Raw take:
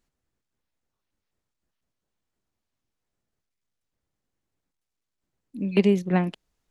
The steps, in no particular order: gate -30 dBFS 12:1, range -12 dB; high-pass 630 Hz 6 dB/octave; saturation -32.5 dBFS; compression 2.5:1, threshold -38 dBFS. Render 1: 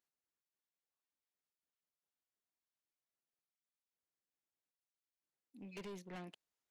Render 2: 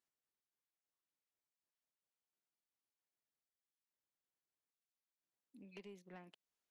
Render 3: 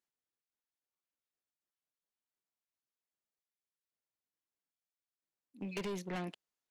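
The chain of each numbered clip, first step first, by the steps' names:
high-pass > saturation > gate > compression; compression > high-pass > saturation > gate; gate > high-pass > saturation > compression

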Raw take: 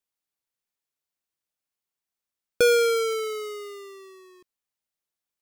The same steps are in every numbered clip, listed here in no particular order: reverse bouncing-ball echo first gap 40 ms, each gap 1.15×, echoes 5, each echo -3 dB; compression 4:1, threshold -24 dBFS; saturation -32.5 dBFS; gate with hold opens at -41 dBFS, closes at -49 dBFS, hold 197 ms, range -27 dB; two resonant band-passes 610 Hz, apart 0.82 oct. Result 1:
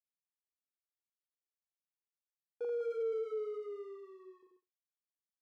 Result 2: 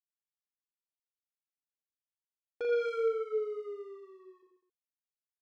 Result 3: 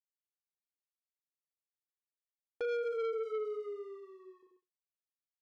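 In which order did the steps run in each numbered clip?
compression > reverse bouncing-ball echo > saturation > gate with hold > two resonant band-passes; compression > gate with hold > two resonant band-passes > saturation > reverse bouncing-ball echo; reverse bouncing-ball echo > gate with hold > compression > two resonant band-passes > saturation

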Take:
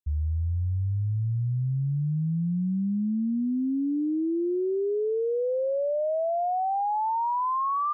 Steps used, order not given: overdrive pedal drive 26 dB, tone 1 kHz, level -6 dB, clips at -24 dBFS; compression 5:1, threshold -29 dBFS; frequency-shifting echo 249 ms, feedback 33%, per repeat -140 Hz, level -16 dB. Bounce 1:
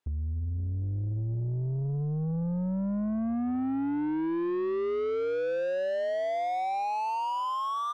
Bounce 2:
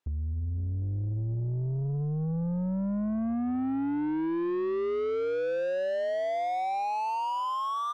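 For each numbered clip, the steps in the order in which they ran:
frequency-shifting echo > compression > overdrive pedal; compression > frequency-shifting echo > overdrive pedal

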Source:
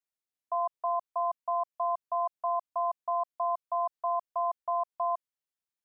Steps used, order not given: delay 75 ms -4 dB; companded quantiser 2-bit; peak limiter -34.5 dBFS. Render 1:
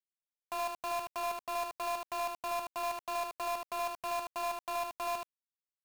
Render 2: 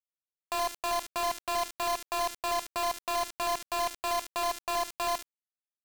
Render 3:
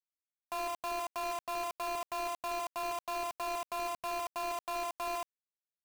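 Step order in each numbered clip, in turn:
companded quantiser > peak limiter > delay; peak limiter > delay > companded quantiser; delay > companded quantiser > peak limiter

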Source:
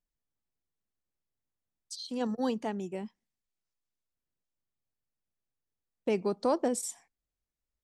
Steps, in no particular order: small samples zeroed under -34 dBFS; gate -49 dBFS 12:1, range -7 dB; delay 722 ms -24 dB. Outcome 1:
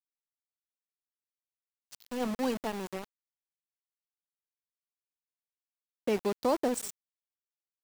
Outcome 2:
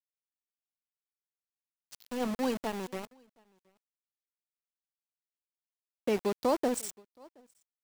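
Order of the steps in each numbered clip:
delay > small samples zeroed > gate; small samples zeroed > delay > gate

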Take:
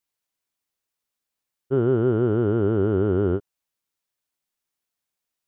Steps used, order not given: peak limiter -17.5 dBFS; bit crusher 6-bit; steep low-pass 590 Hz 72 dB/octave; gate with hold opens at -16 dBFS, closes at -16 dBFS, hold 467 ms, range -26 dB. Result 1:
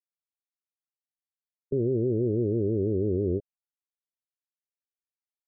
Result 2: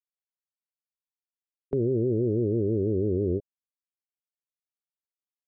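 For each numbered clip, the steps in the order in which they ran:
bit crusher > gate with hold > peak limiter > steep low-pass; bit crusher > steep low-pass > gate with hold > peak limiter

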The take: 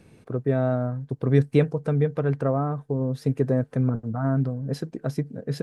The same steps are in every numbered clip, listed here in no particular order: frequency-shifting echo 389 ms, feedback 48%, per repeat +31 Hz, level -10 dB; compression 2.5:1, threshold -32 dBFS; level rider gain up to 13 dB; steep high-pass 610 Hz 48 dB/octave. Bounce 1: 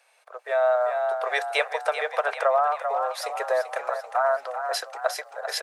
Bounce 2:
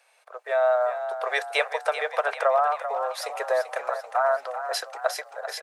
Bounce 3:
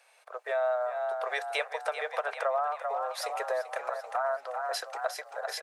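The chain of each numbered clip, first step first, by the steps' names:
steep high-pass > frequency-shifting echo > compression > level rider; steep high-pass > compression > level rider > frequency-shifting echo; steep high-pass > level rider > frequency-shifting echo > compression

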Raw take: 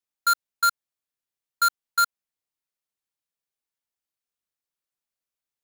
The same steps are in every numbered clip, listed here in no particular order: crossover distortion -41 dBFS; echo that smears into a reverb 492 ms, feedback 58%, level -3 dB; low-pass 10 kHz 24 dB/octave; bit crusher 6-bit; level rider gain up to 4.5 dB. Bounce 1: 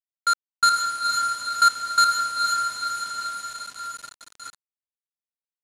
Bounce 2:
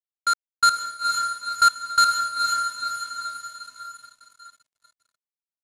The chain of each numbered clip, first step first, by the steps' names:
crossover distortion > echo that smears into a reverb > level rider > bit crusher > low-pass; level rider > bit crusher > echo that smears into a reverb > crossover distortion > low-pass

